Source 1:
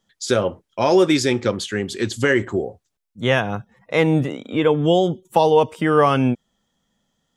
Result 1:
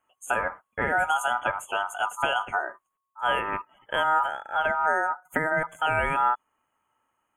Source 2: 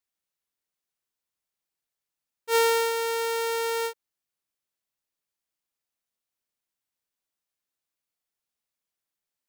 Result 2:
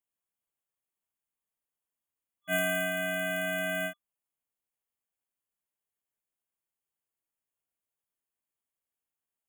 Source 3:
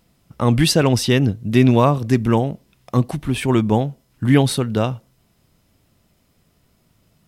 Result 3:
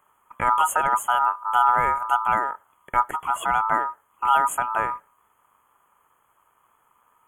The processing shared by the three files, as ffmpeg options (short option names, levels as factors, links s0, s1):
-filter_complex "[0:a]afftfilt=real='re*(1-between(b*sr/4096,2300,7400))':imag='im*(1-between(b*sr/4096,2300,7400))':win_size=4096:overlap=0.75,acrossover=split=230|3000[s0][s1][s2];[s1]acompressor=threshold=0.0708:ratio=4[s3];[s0][s3][s2]amix=inputs=3:normalize=0,aeval=exprs='val(0)*sin(2*PI*1100*n/s)':c=same"